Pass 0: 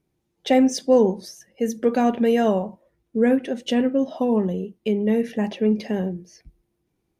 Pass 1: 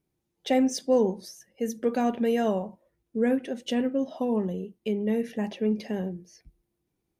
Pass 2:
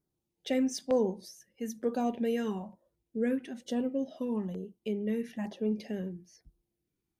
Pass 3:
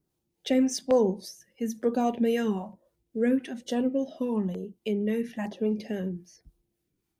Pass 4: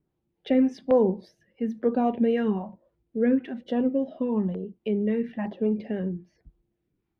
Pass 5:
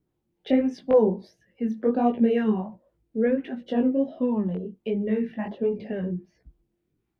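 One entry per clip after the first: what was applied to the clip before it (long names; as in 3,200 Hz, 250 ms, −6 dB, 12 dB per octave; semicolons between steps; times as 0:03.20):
high-shelf EQ 7,400 Hz +5 dB; level −6 dB
auto-filter notch saw down 1.1 Hz 380–2,900 Hz; level −5 dB
two-band tremolo in antiphase 3.6 Hz, depth 50%, crossover 460 Hz; level +7.5 dB
high-frequency loss of the air 410 metres; level +3 dB
chorus effect 1.4 Hz, delay 16 ms, depth 7.1 ms; level +4 dB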